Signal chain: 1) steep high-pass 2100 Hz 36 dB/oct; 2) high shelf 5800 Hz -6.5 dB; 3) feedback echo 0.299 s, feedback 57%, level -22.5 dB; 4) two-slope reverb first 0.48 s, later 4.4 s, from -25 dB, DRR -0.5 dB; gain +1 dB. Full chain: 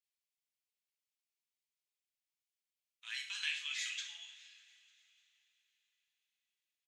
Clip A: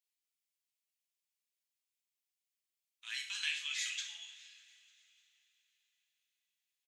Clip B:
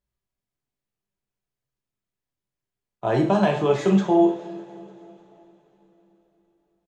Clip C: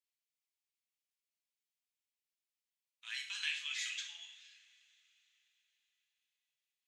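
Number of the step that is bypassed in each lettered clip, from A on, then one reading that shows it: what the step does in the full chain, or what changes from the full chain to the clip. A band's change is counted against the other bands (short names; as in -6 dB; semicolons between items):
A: 2, 8 kHz band +3.0 dB; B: 1, crest factor change -8.5 dB; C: 3, momentary loudness spread change -1 LU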